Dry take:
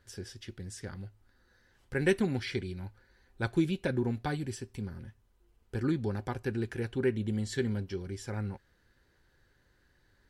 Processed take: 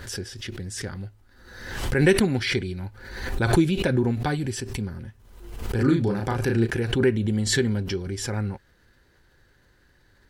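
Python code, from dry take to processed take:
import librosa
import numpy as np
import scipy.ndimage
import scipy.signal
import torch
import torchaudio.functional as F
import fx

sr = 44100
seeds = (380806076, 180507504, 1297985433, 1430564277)

y = fx.doubler(x, sr, ms=35.0, db=-3, at=(5.78, 6.66), fade=0.02)
y = fx.pre_swell(y, sr, db_per_s=54.0)
y = y * librosa.db_to_amplitude(7.5)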